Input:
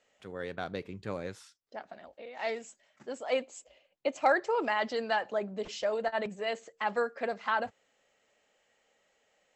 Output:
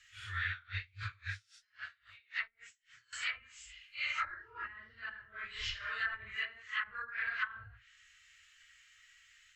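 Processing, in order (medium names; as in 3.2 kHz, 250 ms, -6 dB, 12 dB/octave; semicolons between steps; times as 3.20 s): phase randomisation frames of 200 ms; inverse Chebyshev band-stop 170–850 Hz, stop band 40 dB; low-pass that closes with the level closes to 360 Hz, closed at -36.5 dBFS; treble shelf 4.3 kHz -4 dB; 0.50–3.13 s: logarithmic tremolo 3.7 Hz, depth 30 dB; trim +13 dB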